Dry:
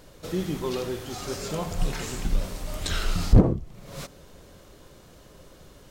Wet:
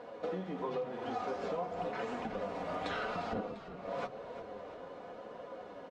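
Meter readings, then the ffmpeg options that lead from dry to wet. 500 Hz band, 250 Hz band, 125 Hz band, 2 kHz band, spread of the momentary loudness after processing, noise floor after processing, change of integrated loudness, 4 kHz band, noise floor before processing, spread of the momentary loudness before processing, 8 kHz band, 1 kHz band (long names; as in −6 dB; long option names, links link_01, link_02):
−4.5 dB, −13.5 dB, −22.5 dB, −5.0 dB, 11 LU, −49 dBFS, −12.0 dB, −14.0 dB, −51 dBFS, 20 LU, below −25 dB, +0.5 dB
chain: -filter_complex "[0:a]highpass=120,lowpass=2100,equalizer=frequency=680:width=1.1:gain=10,aecho=1:1:4.1:0.59,flanger=delay=8.3:depth=2.9:regen=39:speed=0.93:shape=triangular,acompressor=threshold=-37dB:ratio=10,lowshelf=frequency=200:gain=-10,asplit=6[link_01][link_02][link_03][link_04][link_05][link_06];[link_02]adelay=349,afreqshift=-40,volume=-12dB[link_07];[link_03]adelay=698,afreqshift=-80,volume=-18dB[link_08];[link_04]adelay=1047,afreqshift=-120,volume=-24dB[link_09];[link_05]adelay=1396,afreqshift=-160,volume=-30.1dB[link_10];[link_06]adelay=1745,afreqshift=-200,volume=-36.1dB[link_11];[link_01][link_07][link_08][link_09][link_10][link_11]amix=inputs=6:normalize=0,volume=4.5dB"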